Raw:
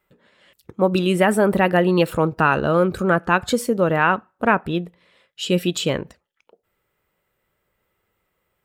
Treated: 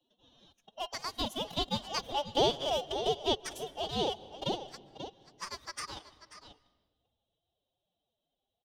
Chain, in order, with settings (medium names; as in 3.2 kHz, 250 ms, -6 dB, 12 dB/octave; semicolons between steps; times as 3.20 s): local Wiener filter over 15 samples; Doppler pass-by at 2.49 s, 6 m/s, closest 3.9 m; elliptic high-pass 1.1 kHz, stop band 50 dB; treble shelf 8.9 kHz -2.5 dB; band-stop 2.3 kHz, Q 8.2; in parallel at +1.5 dB: compression 12:1, threshold -38 dBFS, peak gain reduction 23 dB; on the sum: echo from a far wall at 92 m, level -12 dB; ring modulator 1.9 kHz; formant-preserving pitch shift +10.5 st; on a send at -21 dB: reverberation RT60 1.2 s, pre-delay 129 ms; on the sum: three bands compressed up and down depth 40%